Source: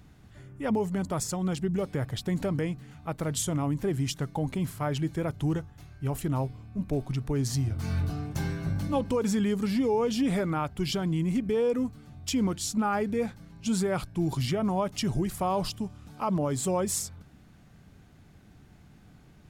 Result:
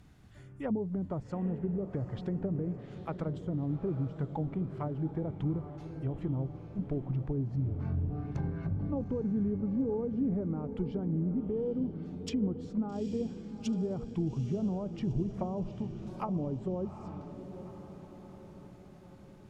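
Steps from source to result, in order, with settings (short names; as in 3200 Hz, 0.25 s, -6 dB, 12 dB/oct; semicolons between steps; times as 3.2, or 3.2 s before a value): treble ducked by the level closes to 420 Hz, closed at -24.5 dBFS; diffused feedback echo 0.834 s, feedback 54%, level -10 dB; gain -4 dB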